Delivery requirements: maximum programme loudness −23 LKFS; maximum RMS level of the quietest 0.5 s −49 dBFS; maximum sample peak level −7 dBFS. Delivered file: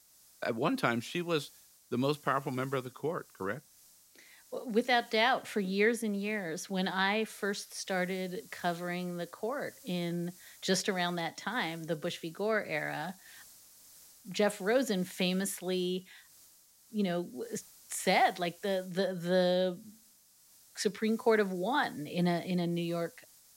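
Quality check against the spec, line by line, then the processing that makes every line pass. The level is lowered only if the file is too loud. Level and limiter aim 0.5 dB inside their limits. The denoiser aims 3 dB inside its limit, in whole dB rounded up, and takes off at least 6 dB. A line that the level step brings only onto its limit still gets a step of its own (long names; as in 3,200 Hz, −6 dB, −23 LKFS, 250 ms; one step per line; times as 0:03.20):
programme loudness −33.0 LKFS: in spec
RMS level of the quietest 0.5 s −63 dBFS: in spec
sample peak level −12.0 dBFS: in spec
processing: no processing needed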